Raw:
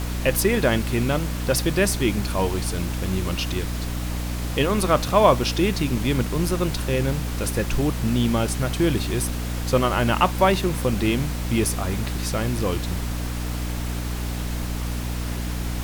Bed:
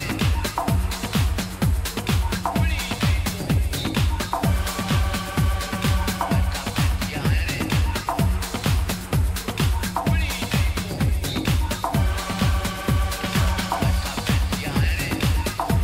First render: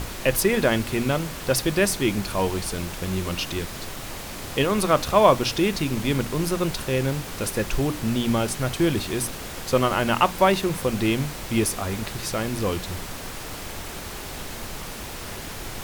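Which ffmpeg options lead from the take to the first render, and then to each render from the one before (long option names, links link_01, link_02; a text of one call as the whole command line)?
ffmpeg -i in.wav -af "bandreject=frequency=60:width_type=h:width=6,bandreject=frequency=120:width_type=h:width=6,bandreject=frequency=180:width_type=h:width=6,bandreject=frequency=240:width_type=h:width=6,bandreject=frequency=300:width_type=h:width=6" out.wav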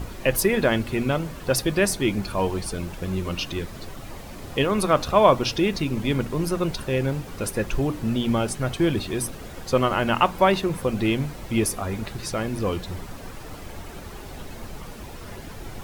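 ffmpeg -i in.wav -af "afftdn=noise_reduction=10:noise_floor=-35" out.wav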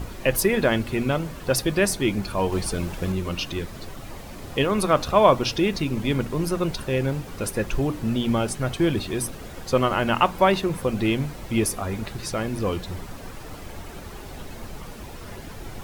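ffmpeg -i in.wav -filter_complex "[0:a]asplit=3[link_01][link_02][link_03];[link_01]atrim=end=2.522[link_04];[link_02]atrim=start=2.518:end=3.122,asetpts=PTS-STARTPTS,volume=3dB[link_05];[link_03]atrim=start=3.118[link_06];[link_04][link_05]acrossfade=duration=0.004:curve1=hsin:curve2=hsin[link_07];[link_07][link_06]acrossfade=duration=0.004:curve1=hsin:curve2=hsin" out.wav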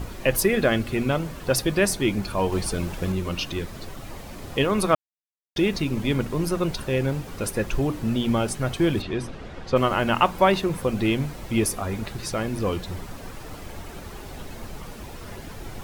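ffmpeg -i in.wav -filter_complex "[0:a]asettb=1/sr,asplit=3[link_01][link_02][link_03];[link_01]atrim=end=0.474[link_04];[link_02]atrim=start=0.47:end=0.96,asetpts=PTS-STARTPTS,afade=type=in:duration=0.004:curve=qsin,afade=type=out:start_time=0.486:duration=0.004:curve=qsin,asuperstop=centerf=930:order=4:qfactor=7.1[link_05];[link_03]atrim=start=0.956[link_06];[link_04][link_05]acrossfade=duration=0.004:curve1=hsin:curve2=qsin[link_07];[link_07][link_06]acrossfade=duration=0.004:curve1=qsin:curve2=hsin,asplit=3[link_08][link_09][link_10];[link_08]afade=type=out:start_time=9.01:duration=0.02[link_11];[link_09]lowpass=3800,afade=type=in:start_time=9.01:duration=0.02,afade=type=out:start_time=9.75:duration=0.02[link_12];[link_10]afade=type=in:start_time=9.75:duration=0.02[link_13];[link_11][link_12][link_13]amix=inputs=3:normalize=0,asplit=3[link_14][link_15][link_16];[link_14]atrim=end=4.95,asetpts=PTS-STARTPTS,afade=type=out:start_time=4.946:duration=0.004:curve=hsin[link_17];[link_15]atrim=start=4.95:end=5.56,asetpts=PTS-STARTPTS,volume=0[link_18];[link_16]atrim=start=5.56,asetpts=PTS-STARTPTS,afade=type=in:duration=0.004:curve=hsin[link_19];[link_17][link_18][link_19]concat=n=3:v=0:a=1" out.wav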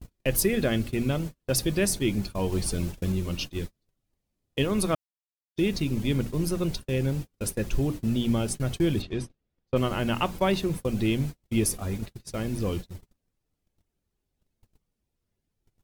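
ffmpeg -i in.wav -af "agate=range=-41dB:threshold=-29dB:ratio=16:detection=peak,equalizer=frequency=1100:width=0.49:gain=-10" out.wav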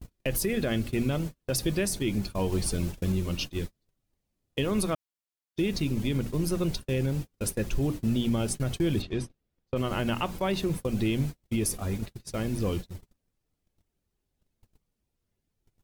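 ffmpeg -i in.wav -af "alimiter=limit=-18dB:level=0:latency=1:release=67" out.wav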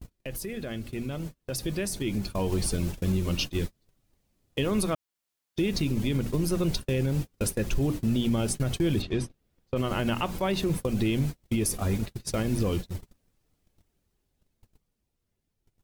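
ffmpeg -i in.wav -af "alimiter=level_in=2dB:limit=-24dB:level=0:latency=1:release=328,volume=-2dB,dynaudnorm=framelen=180:gausssize=21:maxgain=8.5dB" out.wav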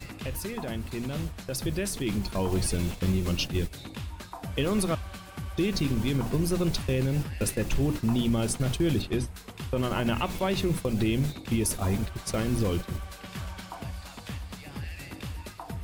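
ffmpeg -i in.wav -i bed.wav -filter_complex "[1:a]volume=-16.5dB[link_01];[0:a][link_01]amix=inputs=2:normalize=0" out.wav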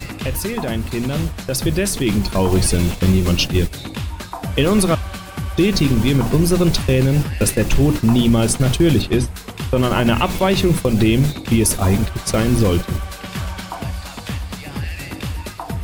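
ffmpeg -i in.wav -af "volume=11.5dB" out.wav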